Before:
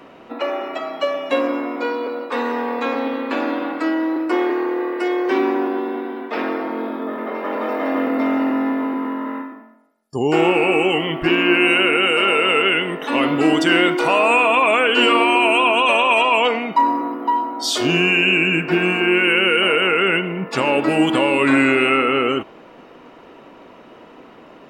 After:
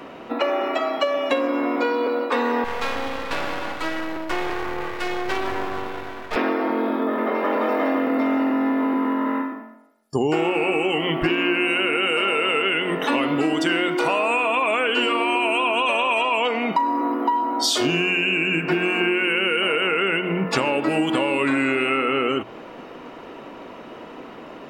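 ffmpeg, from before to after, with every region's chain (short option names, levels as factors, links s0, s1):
-filter_complex "[0:a]asettb=1/sr,asplit=3[s0][s1][s2];[s0]atrim=end=2.644[s3];[s1]atrim=start=2.64:end=6.36,asetpts=PTS-STARTPTS,afade=t=in:d=0.004:c=qsin,afade=t=out:st=3.716:d=0.004:c=qsin,equalizer=f=260:w=0.93:g=-12.5,aeval=exprs='max(val(0),0)':c=same[s4];[s2]atrim=start=6.356[s5];[s3][s4]acrossfade=d=0.004:c1=hsin:c2=qsin[s6];[s6][s5]acrossfade=d=0.004:c1=qsin:c2=hsin,bandreject=f=60:t=h:w=6,bandreject=f=120:t=h:w=6,bandreject=f=180:t=h:w=6,acompressor=threshold=0.0794:ratio=12,volume=1.68"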